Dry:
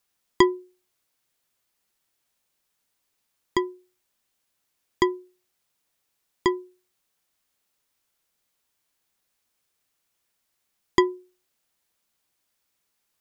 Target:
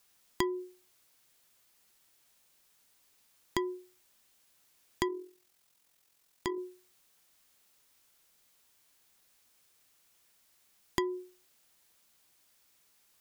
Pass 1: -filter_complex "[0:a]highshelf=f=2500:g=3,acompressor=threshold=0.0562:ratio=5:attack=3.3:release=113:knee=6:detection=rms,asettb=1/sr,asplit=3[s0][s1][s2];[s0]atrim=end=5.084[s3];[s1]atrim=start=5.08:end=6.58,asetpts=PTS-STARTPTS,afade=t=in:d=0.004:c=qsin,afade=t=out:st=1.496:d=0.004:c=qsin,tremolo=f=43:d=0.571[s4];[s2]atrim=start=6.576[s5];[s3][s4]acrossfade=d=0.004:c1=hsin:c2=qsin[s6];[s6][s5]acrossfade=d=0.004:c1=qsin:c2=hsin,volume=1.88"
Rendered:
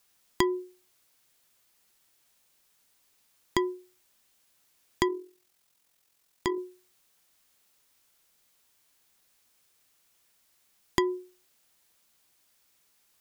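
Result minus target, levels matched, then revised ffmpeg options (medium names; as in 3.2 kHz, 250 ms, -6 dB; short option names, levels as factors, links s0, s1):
compression: peak gain reduction -5.5 dB
-filter_complex "[0:a]highshelf=f=2500:g=3,acompressor=threshold=0.0251:ratio=5:attack=3.3:release=113:knee=6:detection=rms,asettb=1/sr,asplit=3[s0][s1][s2];[s0]atrim=end=5.084[s3];[s1]atrim=start=5.08:end=6.58,asetpts=PTS-STARTPTS,afade=t=in:d=0.004:c=qsin,afade=t=out:st=1.496:d=0.004:c=qsin,tremolo=f=43:d=0.571[s4];[s2]atrim=start=6.576[s5];[s3][s4]acrossfade=d=0.004:c1=hsin:c2=qsin[s6];[s6][s5]acrossfade=d=0.004:c1=qsin:c2=hsin,volume=1.88"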